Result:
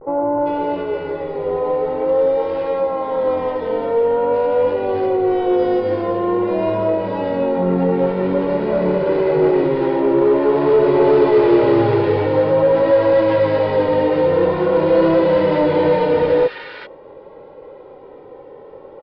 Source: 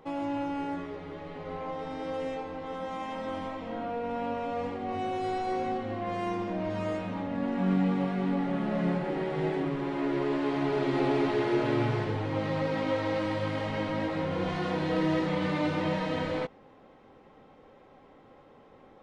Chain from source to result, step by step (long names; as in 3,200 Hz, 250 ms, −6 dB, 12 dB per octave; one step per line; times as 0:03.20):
0:08.09–0:09.30: lower of the sound and its delayed copy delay 0.42 ms
parametric band 490 Hz +13.5 dB 2.9 octaves
comb filter 2.1 ms, depth 62%
in parallel at −7 dB: wave folding −14 dBFS
on the sum: pitch vibrato 0.48 Hz 61 cents
downsampling to 11,025 Hz
multiband delay without the direct sound lows, highs 390 ms, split 1,400 Hz